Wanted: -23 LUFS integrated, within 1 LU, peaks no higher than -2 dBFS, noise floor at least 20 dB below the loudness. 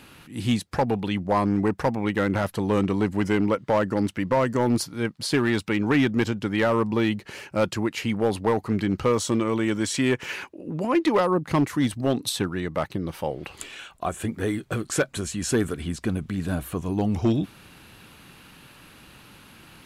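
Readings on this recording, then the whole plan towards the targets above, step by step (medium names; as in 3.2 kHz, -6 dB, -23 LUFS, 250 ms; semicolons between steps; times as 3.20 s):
clipped samples 0.8%; clipping level -14.5 dBFS; loudness -25.0 LUFS; peak level -14.5 dBFS; loudness target -23.0 LUFS
-> clip repair -14.5 dBFS; trim +2 dB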